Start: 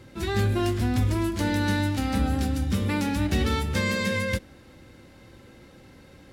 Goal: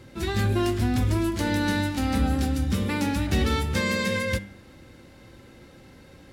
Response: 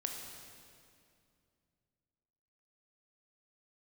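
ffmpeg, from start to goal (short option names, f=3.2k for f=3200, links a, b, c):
-filter_complex "[0:a]bandreject=f=99.61:t=h:w=4,bandreject=f=199.22:t=h:w=4,bandreject=f=298.83:t=h:w=4,bandreject=f=398.44:t=h:w=4,bandreject=f=498.05:t=h:w=4,bandreject=f=597.66:t=h:w=4,bandreject=f=697.27:t=h:w=4,bandreject=f=796.88:t=h:w=4,bandreject=f=896.49:t=h:w=4,bandreject=f=996.1:t=h:w=4,bandreject=f=1.09571k:t=h:w=4,bandreject=f=1.19532k:t=h:w=4,bandreject=f=1.29493k:t=h:w=4,bandreject=f=1.39454k:t=h:w=4,bandreject=f=1.49415k:t=h:w=4,bandreject=f=1.59376k:t=h:w=4,bandreject=f=1.69337k:t=h:w=4,bandreject=f=1.79298k:t=h:w=4,bandreject=f=1.89259k:t=h:w=4,bandreject=f=1.9922k:t=h:w=4,bandreject=f=2.09181k:t=h:w=4,bandreject=f=2.19142k:t=h:w=4,bandreject=f=2.29103k:t=h:w=4,bandreject=f=2.39064k:t=h:w=4,bandreject=f=2.49025k:t=h:w=4,bandreject=f=2.58986k:t=h:w=4,bandreject=f=2.68947k:t=h:w=4,bandreject=f=2.78908k:t=h:w=4,bandreject=f=2.88869k:t=h:w=4,bandreject=f=2.9883k:t=h:w=4,bandreject=f=3.08791k:t=h:w=4,bandreject=f=3.18752k:t=h:w=4,bandreject=f=3.28713k:t=h:w=4,bandreject=f=3.38674k:t=h:w=4,bandreject=f=3.48635k:t=h:w=4,bandreject=f=3.58596k:t=h:w=4,asplit=2[a][b];[1:a]atrim=start_sample=2205,atrim=end_sample=3528[c];[b][c]afir=irnorm=-1:irlink=0,volume=-15.5dB[d];[a][d]amix=inputs=2:normalize=0"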